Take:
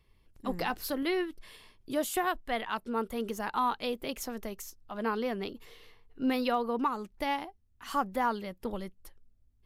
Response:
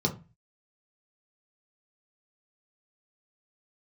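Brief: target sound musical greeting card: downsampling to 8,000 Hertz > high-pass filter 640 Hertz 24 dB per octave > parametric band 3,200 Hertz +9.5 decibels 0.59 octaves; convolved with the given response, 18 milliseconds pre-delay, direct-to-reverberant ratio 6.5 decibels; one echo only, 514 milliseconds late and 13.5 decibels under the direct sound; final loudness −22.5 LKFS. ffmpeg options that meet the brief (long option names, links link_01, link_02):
-filter_complex "[0:a]aecho=1:1:514:0.211,asplit=2[link_01][link_02];[1:a]atrim=start_sample=2205,adelay=18[link_03];[link_02][link_03]afir=irnorm=-1:irlink=0,volume=-15dB[link_04];[link_01][link_04]amix=inputs=2:normalize=0,aresample=8000,aresample=44100,highpass=frequency=640:width=0.5412,highpass=frequency=640:width=1.3066,equalizer=frequency=3200:width_type=o:width=0.59:gain=9.5,volume=11.5dB"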